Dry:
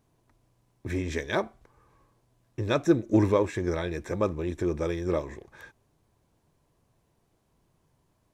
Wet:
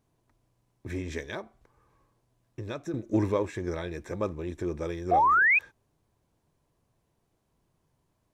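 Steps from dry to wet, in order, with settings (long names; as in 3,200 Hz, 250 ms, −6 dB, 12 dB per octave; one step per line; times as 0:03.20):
0:01.25–0:02.94: downward compressor 3 to 1, threshold −31 dBFS, peak gain reduction 12 dB
0:05.11–0:05.59: sound drawn into the spectrogram rise 670–2,600 Hz −17 dBFS
level −4 dB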